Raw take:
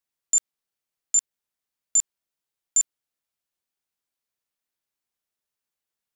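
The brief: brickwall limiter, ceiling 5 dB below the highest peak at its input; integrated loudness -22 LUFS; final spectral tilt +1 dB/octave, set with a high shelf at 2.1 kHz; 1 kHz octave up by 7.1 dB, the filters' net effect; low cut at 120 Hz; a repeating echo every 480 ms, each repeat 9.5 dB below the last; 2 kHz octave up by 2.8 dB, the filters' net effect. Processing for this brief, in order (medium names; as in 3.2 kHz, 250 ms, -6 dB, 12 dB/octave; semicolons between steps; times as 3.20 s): high-pass 120 Hz; peaking EQ 1 kHz +9 dB; peaking EQ 2 kHz +3.5 dB; treble shelf 2.1 kHz -4.5 dB; peak limiter -21.5 dBFS; feedback delay 480 ms, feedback 33%, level -9.5 dB; trim +11 dB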